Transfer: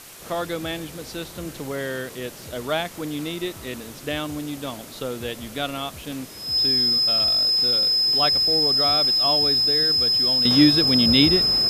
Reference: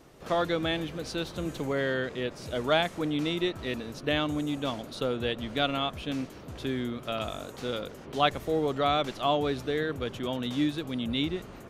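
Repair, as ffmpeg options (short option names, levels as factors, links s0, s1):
-af "bandreject=f=5100:w=30,afwtdn=0.0079,asetnsamples=n=441:p=0,asendcmd='10.45 volume volume -11.5dB',volume=1"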